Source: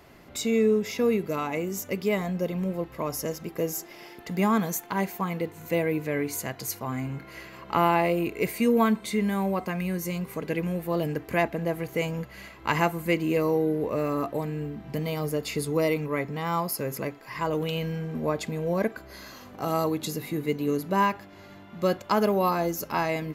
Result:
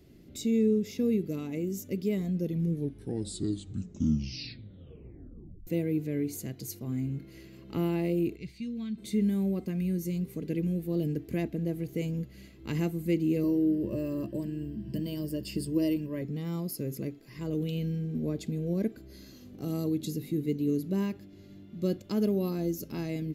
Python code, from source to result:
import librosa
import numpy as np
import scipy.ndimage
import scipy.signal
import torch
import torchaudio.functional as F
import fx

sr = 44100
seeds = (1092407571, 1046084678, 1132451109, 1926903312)

y = fx.curve_eq(x, sr, hz=(100.0, 420.0, 4300.0, 13000.0), db=(0, -20, -1, -29), at=(8.35, 8.97), fade=0.02)
y = fx.ripple_eq(y, sr, per_octave=1.3, db=13, at=(13.43, 16.22))
y = fx.edit(y, sr, fx.tape_stop(start_s=2.33, length_s=3.34), tone=tone)
y = fx.curve_eq(y, sr, hz=(340.0, 950.0, 3700.0), db=(0, -25, -8))